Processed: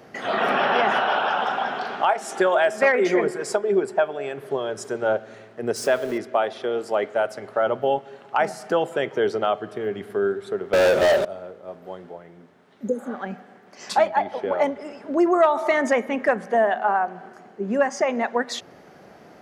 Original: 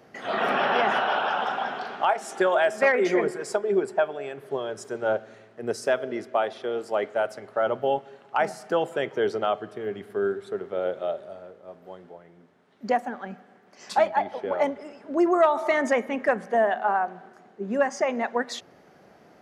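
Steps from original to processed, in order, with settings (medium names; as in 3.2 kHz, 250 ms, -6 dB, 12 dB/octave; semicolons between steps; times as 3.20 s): 5.76–6.18 s: jump at every zero crossing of -38.5 dBFS; 12.86–13.11 s: spectral replace 530–6200 Hz both; in parallel at -1.5 dB: compression, threshold -33 dBFS, peak gain reduction 17 dB; 10.73–11.25 s: on the sum: waveshaping leveller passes 5; 16.78–17.86 s: band-stop 3.7 kHz, Q 13; trim +1 dB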